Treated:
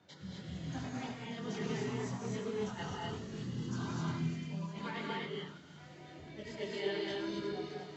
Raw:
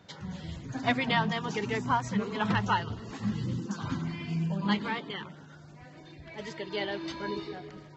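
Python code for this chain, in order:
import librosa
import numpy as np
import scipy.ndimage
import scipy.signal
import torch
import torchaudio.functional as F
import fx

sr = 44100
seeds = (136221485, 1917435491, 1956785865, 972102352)

p1 = scipy.signal.sosfilt(scipy.signal.butter(2, 98.0, 'highpass', fs=sr, output='sos'), x)
p2 = fx.over_compress(p1, sr, threshold_db=-33.0, ratio=-0.5)
p3 = fx.rotary(p2, sr, hz=1.0)
p4 = fx.chorus_voices(p3, sr, voices=4, hz=0.61, base_ms=23, depth_ms=2.8, mix_pct=45)
p5 = p4 + fx.echo_wet_highpass(p4, sr, ms=352, feedback_pct=67, hz=5300.0, wet_db=-7, dry=0)
p6 = fx.rev_gated(p5, sr, seeds[0], gate_ms=290, shape='rising', drr_db=-2.0)
y = p6 * 10.0 ** (-4.0 / 20.0)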